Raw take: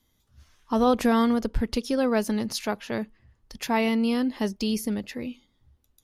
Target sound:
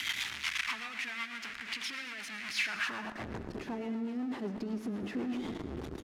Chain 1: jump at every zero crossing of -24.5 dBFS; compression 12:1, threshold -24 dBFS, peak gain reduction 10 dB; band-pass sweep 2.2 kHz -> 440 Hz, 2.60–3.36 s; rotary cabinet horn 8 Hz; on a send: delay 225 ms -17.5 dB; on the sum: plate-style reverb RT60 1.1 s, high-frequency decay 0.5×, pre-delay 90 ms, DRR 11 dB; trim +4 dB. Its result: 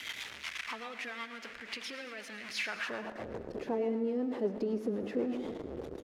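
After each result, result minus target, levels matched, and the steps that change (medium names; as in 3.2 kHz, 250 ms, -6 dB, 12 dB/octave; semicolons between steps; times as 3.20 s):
500 Hz band +9.0 dB; jump at every zero crossing: distortion -6 dB
add after compression: peaking EQ 510 Hz -14.5 dB 0.87 oct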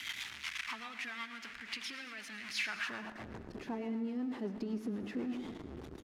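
jump at every zero crossing: distortion -6 dB
change: jump at every zero crossing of -14.5 dBFS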